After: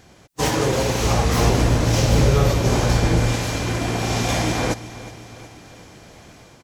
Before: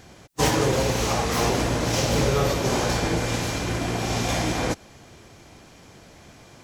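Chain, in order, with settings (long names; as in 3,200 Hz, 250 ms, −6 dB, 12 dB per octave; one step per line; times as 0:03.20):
0:01.04–0:03.32: low-shelf EQ 140 Hz +11.5 dB
automatic gain control gain up to 5 dB
repeating echo 366 ms, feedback 58%, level −17 dB
level −2 dB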